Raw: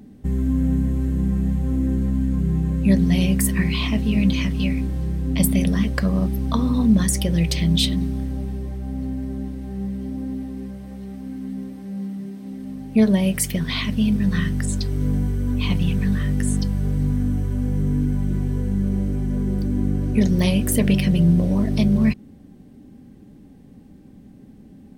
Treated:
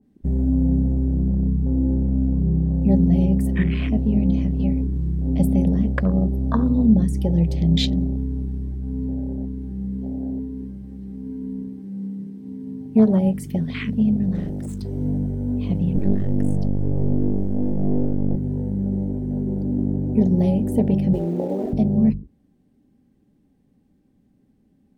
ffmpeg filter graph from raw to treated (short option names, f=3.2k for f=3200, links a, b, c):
-filter_complex "[0:a]asettb=1/sr,asplit=3[a][b][c];[a]atrim=end=14.344[d];[b]atrim=start=14.34:end=14.82,asetpts=PTS-STARTPTS,afade=t=in:d=0.004:c=qsin,afade=t=out:st=0.476:d=0.004:c=qsin,highshelf=f=3.7k:g=6,asoftclip=type=hard:threshold=-23.5dB[e];[c]atrim=start=14.816[f];[d][e]acrossfade=d=0.004:c1=hsin:c2=qsin[g];[g][f]acrossfade=d=0.004:c1=qsin:c2=hsin,asettb=1/sr,asplit=3[h][i][j];[h]atrim=end=15.954[k];[i]atrim=start=15.95:end=18.36,asetpts=PTS-STARTPTS,afade=t=in:d=0.004:c=qsin,afade=t=out:st=2.406:d=0.004:c=qsin,equalizer=f=84:w=7.2:g=3.5,acontrast=36,aeval=exprs='max(val(0),0)':c=same[l];[j]atrim=start=18.356[m];[k][l]acrossfade=d=0.004:c1=hsin:c2=qsin[n];[n][m]acrossfade=d=0.004:c1=qsin:c2=hsin,asettb=1/sr,asplit=3[o][p][q];[o]atrim=end=21.134[r];[p]atrim=start=21.13:end=21.73,asetpts=PTS-STARTPTS,afade=t=in:d=0.004:c=qsin,afade=t=out:st=0.596:d=0.004:c=qsin,highpass=f=380:t=q:w=1.7,acrusher=bits=6:dc=4:mix=0:aa=0.000001[s];[q]atrim=start=21.726[t];[r][s]acrossfade=d=0.004:c1=hsin:c2=qsin[u];[u][t]acrossfade=d=0.004:c1=qsin:c2=hsin,bandreject=f=50:t=h:w=6,bandreject=f=100:t=h:w=6,bandreject=f=150:t=h:w=6,bandreject=f=200:t=h:w=6,afwtdn=0.0447,adynamicequalizer=threshold=0.00794:dfrequency=1500:dqfactor=0.7:tfrequency=1500:tqfactor=0.7:attack=5:release=100:ratio=0.375:range=3:mode=cutabove:tftype=highshelf,volume=1.5dB"